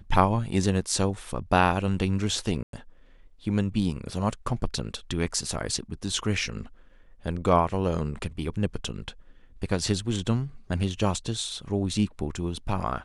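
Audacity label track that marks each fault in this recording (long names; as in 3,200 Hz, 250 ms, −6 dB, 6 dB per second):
2.630000	2.730000	drop-out 102 ms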